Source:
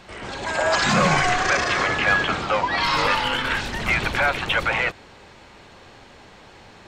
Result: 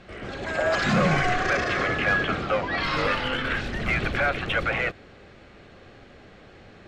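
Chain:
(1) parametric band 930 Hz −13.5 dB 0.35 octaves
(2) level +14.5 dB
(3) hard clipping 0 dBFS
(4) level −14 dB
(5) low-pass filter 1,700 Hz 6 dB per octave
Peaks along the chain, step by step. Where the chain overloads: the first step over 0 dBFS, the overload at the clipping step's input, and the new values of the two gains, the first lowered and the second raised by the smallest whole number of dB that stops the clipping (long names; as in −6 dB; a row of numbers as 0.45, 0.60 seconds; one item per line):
−8.5, +6.0, 0.0, −14.0, −14.0 dBFS
step 2, 6.0 dB
step 2 +8.5 dB, step 4 −8 dB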